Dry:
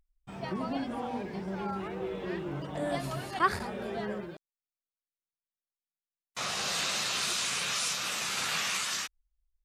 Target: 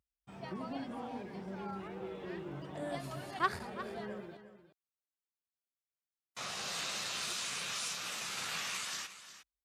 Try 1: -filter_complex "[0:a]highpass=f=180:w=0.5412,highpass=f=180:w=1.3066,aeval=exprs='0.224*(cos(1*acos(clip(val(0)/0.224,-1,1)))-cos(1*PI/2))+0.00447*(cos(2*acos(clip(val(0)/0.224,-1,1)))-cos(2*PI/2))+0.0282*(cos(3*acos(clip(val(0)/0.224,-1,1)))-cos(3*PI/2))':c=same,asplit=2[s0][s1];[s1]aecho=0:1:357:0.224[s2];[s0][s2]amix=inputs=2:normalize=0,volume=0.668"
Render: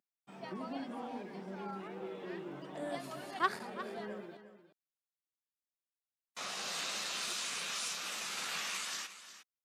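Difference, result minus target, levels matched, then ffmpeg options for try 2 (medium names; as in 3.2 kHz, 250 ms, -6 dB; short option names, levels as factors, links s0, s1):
125 Hz band -5.5 dB
-filter_complex "[0:a]highpass=f=59:w=0.5412,highpass=f=59:w=1.3066,aeval=exprs='0.224*(cos(1*acos(clip(val(0)/0.224,-1,1)))-cos(1*PI/2))+0.00447*(cos(2*acos(clip(val(0)/0.224,-1,1)))-cos(2*PI/2))+0.0282*(cos(3*acos(clip(val(0)/0.224,-1,1)))-cos(3*PI/2))':c=same,asplit=2[s0][s1];[s1]aecho=0:1:357:0.224[s2];[s0][s2]amix=inputs=2:normalize=0,volume=0.668"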